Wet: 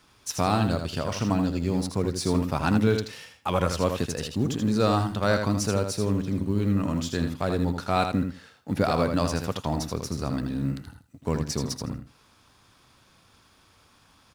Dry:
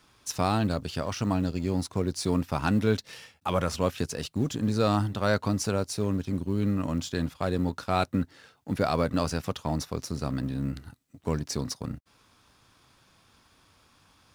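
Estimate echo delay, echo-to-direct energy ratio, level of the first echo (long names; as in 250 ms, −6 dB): 80 ms, −6.5 dB, −6.5 dB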